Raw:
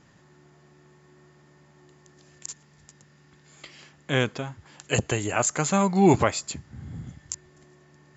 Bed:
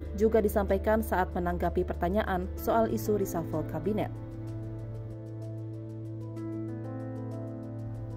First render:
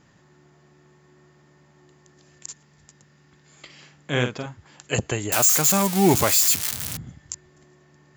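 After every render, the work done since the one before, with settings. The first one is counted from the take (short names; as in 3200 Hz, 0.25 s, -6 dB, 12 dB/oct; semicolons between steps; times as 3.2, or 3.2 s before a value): 3.65–4.46 doubler 48 ms -7 dB; 5.32–6.97 switching spikes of -12 dBFS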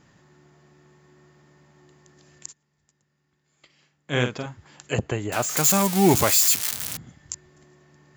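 2.48–4.2 upward expander, over -52 dBFS; 4.93–5.57 LPF 1900 Hz 6 dB/oct; 6.3–7.2 low shelf 180 Hz -10.5 dB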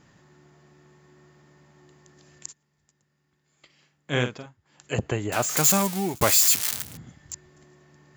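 4.12–5.06 dip -18.5 dB, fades 0.42 s; 5.69–6.21 fade out; 6.82–7.33 hard clip -25.5 dBFS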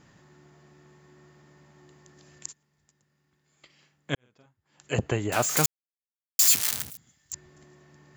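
4.15–4.94 fade in quadratic; 5.66–6.39 mute; 6.9–7.33 pre-emphasis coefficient 0.9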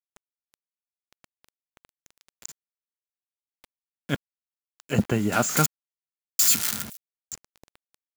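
small resonant body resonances 210/1400 Hz, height 13 dB, ringing for 50 ms; bit-crush 7-bit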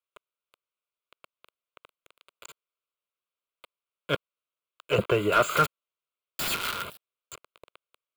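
fixed phaser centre 1200 Hz, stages 8; overdrive pedal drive 19 dB, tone 1600 Hz, clips at -8.5 dBFS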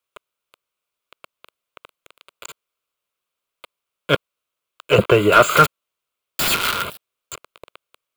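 gain +10 dB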